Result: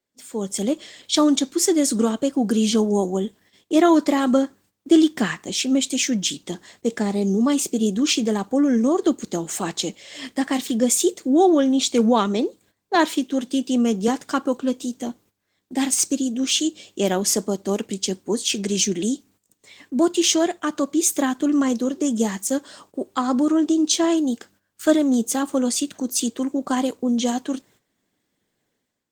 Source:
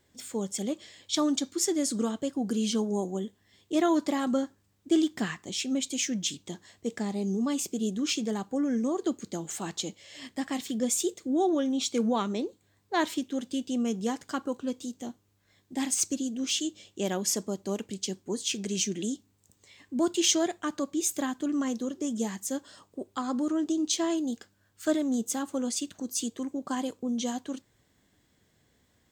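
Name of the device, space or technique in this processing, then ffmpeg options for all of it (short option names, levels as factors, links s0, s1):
video call: -filter_complex "[0:a]asettb=1/sr,asplit=3[s0][s1][s2];[s0]atrim=end=12.954[s3];[s1]atrim=start=12.95:end=14.08,asetpts=PTS-STARTPTS,afade=t=in:d=0.004:c=qsin,afade=t=out:st=1.126:d=0.004:c=qsin,highpass=f=130:w=0.5412,highpass=f=130:w=1.3066[s4];[s2]atrim=start=14.076[s5];[s3][s4]acrossfade=d=0.004:c1=hsin:c2=qsin[s6];[s6][s5]acrossfade=d=0.004:c1=qsin:c2=hsin,highpass=170,dynaudnorm=f=120:g=7:m=3.35,agate=range=0.224:threshold=0.00282:ratio=16:detection=peak" -ar 48000 -c:a libopus -b:a 20k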